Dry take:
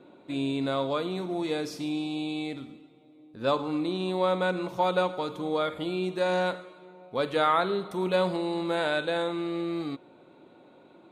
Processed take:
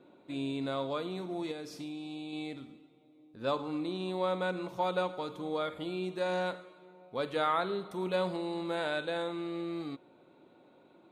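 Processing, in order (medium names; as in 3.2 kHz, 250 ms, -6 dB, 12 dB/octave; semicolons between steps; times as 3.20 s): 1.51–2.33 s: compression, threshold -32 dBFS, peak gain reduction 6.5 dB; trim -6 dB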